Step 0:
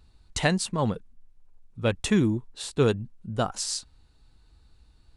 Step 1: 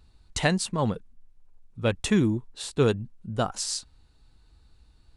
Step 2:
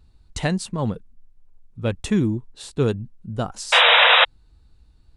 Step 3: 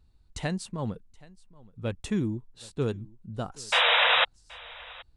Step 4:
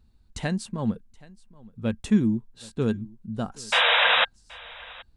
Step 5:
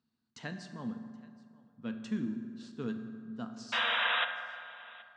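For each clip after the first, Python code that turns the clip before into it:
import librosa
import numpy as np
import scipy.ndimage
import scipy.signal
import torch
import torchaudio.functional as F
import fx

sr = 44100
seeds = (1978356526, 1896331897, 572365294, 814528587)

y1 = x
y2 = fx.low_shelf(y1, sr, hz=440.0, db=6.0)
y2 = fx.spec_paint(y2, sr, seeds[0], shape='noise', start_s=3.72, length_s=0.53, low_hz=460.0, high_hz=3900.0, level_db=-11.0)
y2 = y2 * librosa.db_to_amplitude(-2.5)
y3 = y2 + 10.0 ** (-23.0 / 20.0) * np.pad(y2, (int(775 * sr / 1000.0), 0))[:len(y2)]
y3 = y3 * librosa.db_to_amplitude(-8.0)
y4 = fx.small_body(y3, sr, hz=(220.0, 1600.0), ring_ms=90, db=10)
y4 = y4 * librosa.db_to_amplitude(1.5)
y5 = fx.cabinet(y4, sr, low_hz=160.0, low_slope=24, high_hz=5900.0, hz=(200.0, 370.0, 550.0, 810.0, 2300.0, 3700.0), db=(-8, -8, -9, -7, -6, -5))
y5 = fx.rev_fdn(y5, sr, rt60_s=2.2, lf_ratio=0.9, hf_ratio=0.5, size_ms=25.0, drr_db=6.0)
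y5 = y5 * librosa.db_to_amplitude(-8.0)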